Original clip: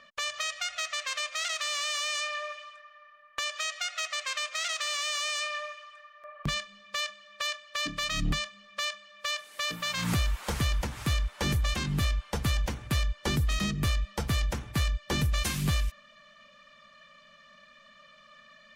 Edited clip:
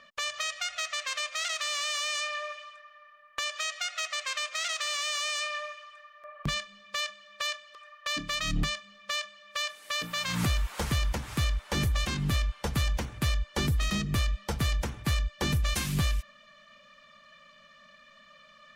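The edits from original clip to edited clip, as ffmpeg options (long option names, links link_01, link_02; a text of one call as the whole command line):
ffmpeg -i in.wav -filter_complex "[0:a]asplit=3[link_01][link_02][link_03];[link_01]atrim=end=7.752[link_04];[link_02]atrim=start=5.868:end=6.182[link_05];[link_03]atrim=start=7.748[link_06];[link_04][link_05]acrossfade=duration=0.004:curve1=hsin:curve2=hsin[link_07];[link_07][link_06]acrossfade=duration=0.004:curve1=hsin:curve2=hsin" out.wav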